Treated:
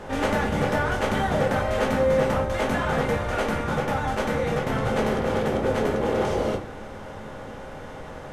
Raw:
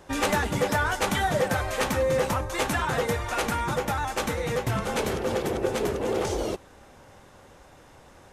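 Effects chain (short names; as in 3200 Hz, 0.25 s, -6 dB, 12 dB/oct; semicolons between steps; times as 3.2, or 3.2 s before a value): per-bin compression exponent 0.6; high shelf 4700 Hz -11.5 dB; shoebox room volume 130 m³, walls furnished, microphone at 1.4 m; gain -5 dB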